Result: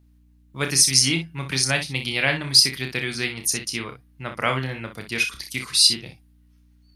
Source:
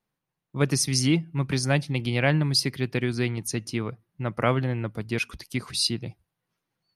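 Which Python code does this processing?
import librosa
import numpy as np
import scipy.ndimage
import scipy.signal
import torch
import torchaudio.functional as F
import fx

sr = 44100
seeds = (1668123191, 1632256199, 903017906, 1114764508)

y = fx.tilt_shelf(x, sr, db=-8.0, hz=1200.0)
y = fx.add_hum(y, sr, base_hz=60, snr_db=31)
y = fx.room_early_taps(y, sr, ms=(30, 61), db=(-7.0, -9.5))
y = F.gain(torch.from_numpy(y), 1.5).numpy()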